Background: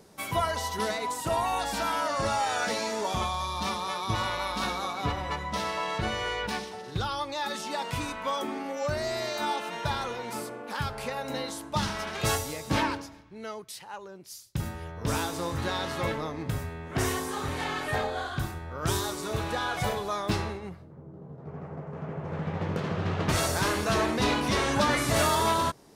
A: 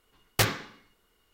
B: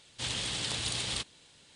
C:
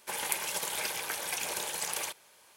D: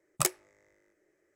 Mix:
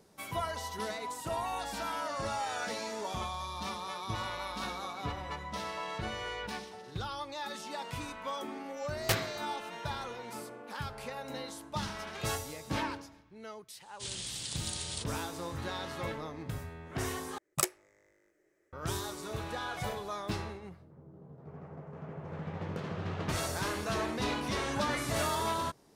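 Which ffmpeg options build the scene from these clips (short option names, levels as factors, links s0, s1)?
-filter_complex "[0:a]volume=0.422[s0];[1:a]asplit=2[s1][s2];[s2]adelay=130,lowpass=f=2000:p=1,volume=0.141,asplit=2[s3][s4];[s4]adelay=130,lowpass=f=2000:p=1,volume=0.49,asplit=2[s5][s6];[s6]adelay=130,lowpass=f=2000:p=1,volume=0.49,asplit=2[s7][s8];[s8]adelay=130,lowpass=f=2000:p=1,volume=0.49[s9];[s1][s3][s5][s7][s9]amix=inputs=5:normalize=0[s10];[2:a]bass=f=250:g=5,treble=f=4000:g=11[s11];[4:a]dynaudnorm=f=130:g=3:m=2[s12];[s0]asplit=2[s13][s14];[s13]atrim=end=17.384[s15];[s12]atrim=end=1.35,asetpts=PTS-STARTPTS,volume=0.473[s16];[s14]atrim=start=18.726[s17];[s10]atrim=end=1.33,asetpts=PTS-STARTPTS,volume=0.501,afade=t=in:d=0.004:c=hsin,afade=t=out:st=1.326:d=0.004:c=hsin,adelay=8700[s18];[s11]atrim=end=1.75,asetpts=PTS-STARTPTS,volume=0.266,afade=t=in:d=0.004:c=hsin,afade=t=out:st=1.746:d=0.004:c=hsin,adelay=13810[s19];[s15][s16]acrossfade=d=0.004:c1=hsin:c2=hsin[s20];[s20][s17]acrossfade=d=0.004:c1=hsin:c2=hsin[s21];[s21][s18][s19]amix=inputs=3:normalize=0"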